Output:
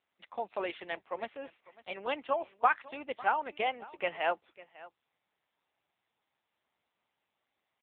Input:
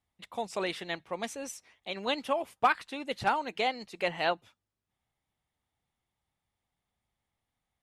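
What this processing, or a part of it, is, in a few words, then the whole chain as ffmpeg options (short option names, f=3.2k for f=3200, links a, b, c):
satellite phone: -af "highpass=380,lowpass=3.1k,aecho=1:1:550:0.106" -ar 8000 -c:a libopencore_amrnb -b:a 6700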